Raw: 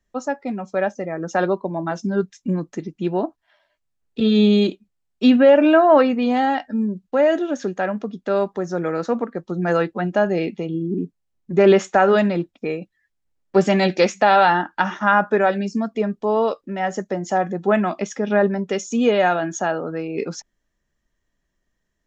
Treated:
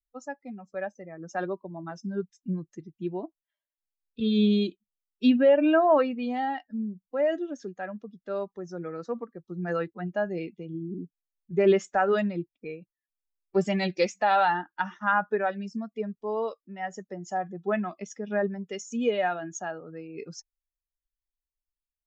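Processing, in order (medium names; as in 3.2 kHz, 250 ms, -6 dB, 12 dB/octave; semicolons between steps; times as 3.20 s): expander on every frequency bin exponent 1.5; trim -6 dB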